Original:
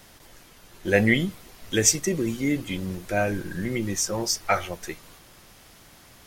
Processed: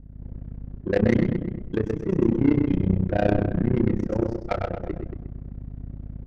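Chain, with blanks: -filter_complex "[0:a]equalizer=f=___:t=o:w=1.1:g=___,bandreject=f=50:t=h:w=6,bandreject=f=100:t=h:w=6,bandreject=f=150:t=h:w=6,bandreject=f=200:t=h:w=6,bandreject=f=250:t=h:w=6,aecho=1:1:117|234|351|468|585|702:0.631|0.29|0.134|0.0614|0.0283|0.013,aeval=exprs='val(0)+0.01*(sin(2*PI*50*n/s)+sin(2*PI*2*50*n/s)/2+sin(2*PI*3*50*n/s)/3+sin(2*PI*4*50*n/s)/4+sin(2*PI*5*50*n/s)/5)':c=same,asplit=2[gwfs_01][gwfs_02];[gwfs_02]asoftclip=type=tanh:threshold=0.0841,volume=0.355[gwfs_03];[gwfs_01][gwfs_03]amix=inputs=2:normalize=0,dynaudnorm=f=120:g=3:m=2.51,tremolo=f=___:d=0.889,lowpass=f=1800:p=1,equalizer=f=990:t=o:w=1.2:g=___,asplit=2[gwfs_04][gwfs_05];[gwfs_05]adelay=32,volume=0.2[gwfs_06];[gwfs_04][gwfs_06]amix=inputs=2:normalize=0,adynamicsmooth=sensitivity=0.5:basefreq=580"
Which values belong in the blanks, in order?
90, 2.5, 31, -8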